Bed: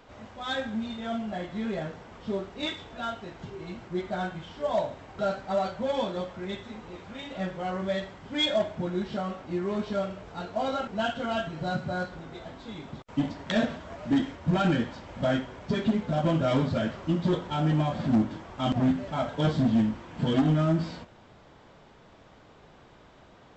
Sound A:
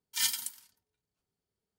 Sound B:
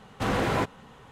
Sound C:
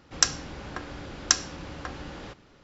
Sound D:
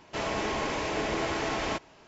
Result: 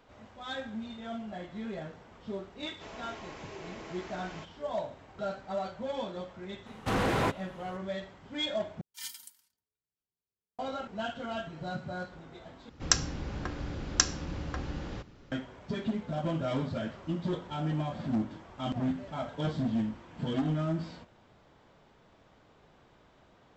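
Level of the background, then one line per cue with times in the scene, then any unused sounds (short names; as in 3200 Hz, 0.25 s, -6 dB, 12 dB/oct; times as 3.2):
bed -7 dB
2.67 add D -15.5 dB
6.66 add B -2 dB + hard clip -19.5 dBFS
8.81 replace with A -12.5 dB
12.69 replace with C -3.5 dB + low shelf 300 Hz +9.5 dB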